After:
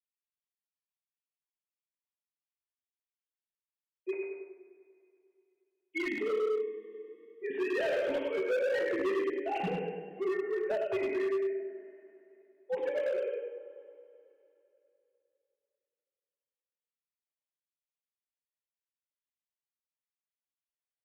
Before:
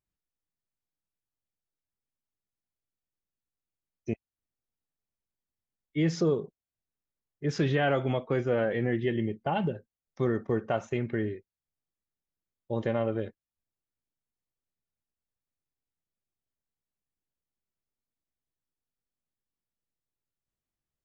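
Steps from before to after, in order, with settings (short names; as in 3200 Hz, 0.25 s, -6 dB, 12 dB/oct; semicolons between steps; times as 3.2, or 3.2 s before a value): sine-wave speech; bell 1300 Hz -9.5 dB 0.68 oct; feedback echo 0.1 s, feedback 41%, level -4 dB; two-slope reverb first 0.81 s, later 3.1 s, from -18 dB, DRR -1 dB; dynamic EQ 2400 Hz, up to +7 dB, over -55 dBFS, Q 2.2; in parallel at -0.5 dB: compressor 12:1, threshold -36 dBFS, peak gain reduction 22 dB; on the sum: overloaded stage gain 20.5 dB; notches 50/100/150/200/250/300/350/400/450 Hz; gain -6.5 dB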